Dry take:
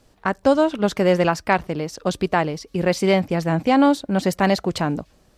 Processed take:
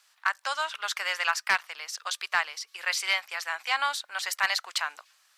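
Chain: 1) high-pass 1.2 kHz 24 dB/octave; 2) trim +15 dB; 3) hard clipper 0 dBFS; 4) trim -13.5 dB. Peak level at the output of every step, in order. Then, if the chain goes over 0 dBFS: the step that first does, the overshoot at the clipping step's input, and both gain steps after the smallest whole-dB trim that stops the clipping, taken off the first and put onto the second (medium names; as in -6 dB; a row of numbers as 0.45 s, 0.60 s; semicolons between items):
-8.5 dBFS, +6.5 dBFS, 0.0 dBFS, -13.5 dBFS; step 2, 6.5 dB; step 2 +8 dB, step 4 -6.5 dB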